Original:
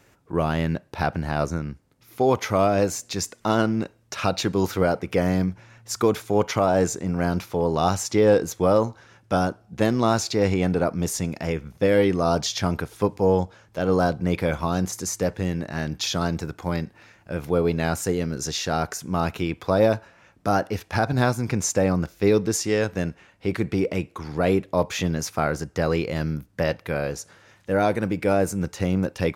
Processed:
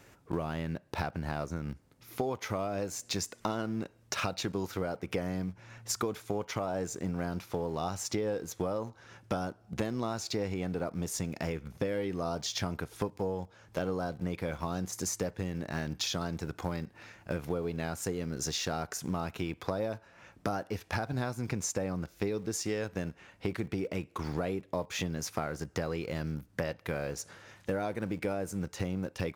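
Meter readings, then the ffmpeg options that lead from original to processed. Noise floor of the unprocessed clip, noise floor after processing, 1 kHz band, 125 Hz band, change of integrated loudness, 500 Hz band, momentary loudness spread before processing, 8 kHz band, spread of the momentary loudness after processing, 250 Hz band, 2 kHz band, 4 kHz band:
-58 dBFS, -61 dBFS, -12.0 dB, -10.5 dB, -11.5 dB, -12.5 dB, 9 LU, -7.5 dB, 5 LU, -11.0 dB, -10.0 dB, -7.5 dB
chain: -filter_complex "[0:a]asplit=2[s0][s1];[s1]aeval=exprs='val(0)*gte(abs(val(0)),0.0316)':c=same,volume=0.282[s2];[s0][s2]amix=inputs=2:normalize=0,acompressor=threshold=0.0316:ratio=10"

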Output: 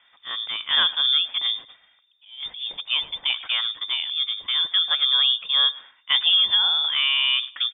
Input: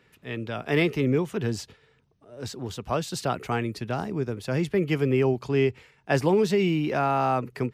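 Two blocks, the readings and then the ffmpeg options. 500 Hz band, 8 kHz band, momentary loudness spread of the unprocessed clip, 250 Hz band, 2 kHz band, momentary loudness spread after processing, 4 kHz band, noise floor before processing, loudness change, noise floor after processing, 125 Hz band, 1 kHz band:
under -25 dB, under -40 dB, 13 LU, under -30 dB, +4.5 dB, 13 LU, +23.5 dB, -63 dBFS, +6.0 dB, -61 dBFS, under -30 dB, -6.5 dB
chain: -af "aecho=1:1:106|212:0.0891|0.0223,lowpass=f=3100:t=q:w=0.5098,lowpass=f=3100:t=q:w=0.6013,lowpass=f=3100:t=q:w=0.9,lowpass=f=3100:t=q:w=2.563,afreqshift=-3700,volume=1.33"

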